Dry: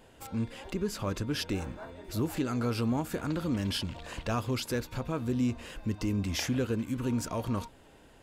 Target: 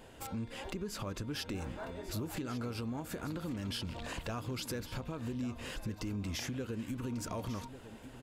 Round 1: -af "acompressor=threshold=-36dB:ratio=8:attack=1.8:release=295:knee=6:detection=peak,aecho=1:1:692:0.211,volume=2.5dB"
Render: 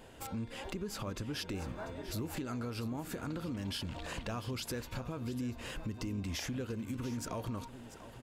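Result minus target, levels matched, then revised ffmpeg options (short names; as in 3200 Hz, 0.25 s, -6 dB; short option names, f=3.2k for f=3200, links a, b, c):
echo 0.452 s early
-af "acompressor=threshold=-36dB:ratio=8:attack=1.8:release=295:knee=6:detection=peak,aecho=1:1:1144:0.211,volume=2.5dB"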